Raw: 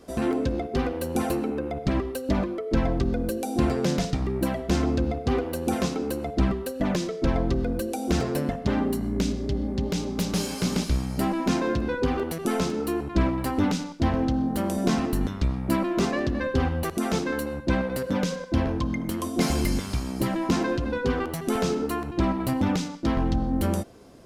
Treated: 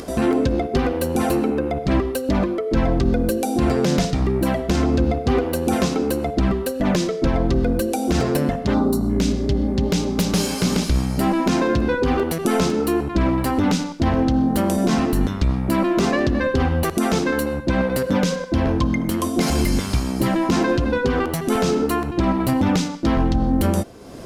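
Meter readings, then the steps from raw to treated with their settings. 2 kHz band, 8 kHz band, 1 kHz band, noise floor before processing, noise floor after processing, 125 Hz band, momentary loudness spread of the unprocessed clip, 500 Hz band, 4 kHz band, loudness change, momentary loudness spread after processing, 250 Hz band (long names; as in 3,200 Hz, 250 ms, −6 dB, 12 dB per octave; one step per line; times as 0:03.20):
+6.0 dB, +6.5 dB, +6.5 dB, −35 dBFS, −28 dBFS, +5.5 dB, 3 LU, +6.5 dB, +6.0 dB, +6.0 dB, 3 LU, +6.0 dB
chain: gain on a spectral selection 0:08.74–0:09.10, 1,500–3,500 Hz −15 dB
upward compression, threshold −34 dBFS
brickwall limiter −17 dBFS, peak gain reduction 7 dB
level +7.5 dB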